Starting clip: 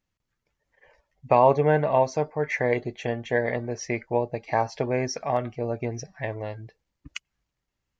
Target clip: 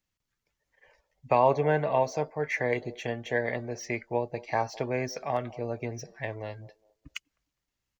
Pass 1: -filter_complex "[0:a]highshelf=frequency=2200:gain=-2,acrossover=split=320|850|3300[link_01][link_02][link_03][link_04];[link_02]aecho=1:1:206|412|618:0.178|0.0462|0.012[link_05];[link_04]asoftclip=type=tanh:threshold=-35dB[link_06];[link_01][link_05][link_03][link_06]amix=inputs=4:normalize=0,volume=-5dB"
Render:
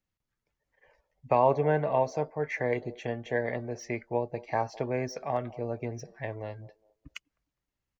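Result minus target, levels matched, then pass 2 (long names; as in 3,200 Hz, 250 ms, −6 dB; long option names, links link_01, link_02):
4,000 Hz band −4.0 dB
-filter_complex "[0:a]highshelf=frequency=2200:gain=7,acrossover=split=320|850|3300[link_01][link_02][link_03][link_04];[link_02]aecho=1:1:206|412|618:0.178|0.0462|0.012[link_05];[link_04]asoftclip=type=tanh:threshold=-35dB[link_06];[link_01][link_05][link_03][link_06]amix=inputs=4:normalize=0,volume=-5dB"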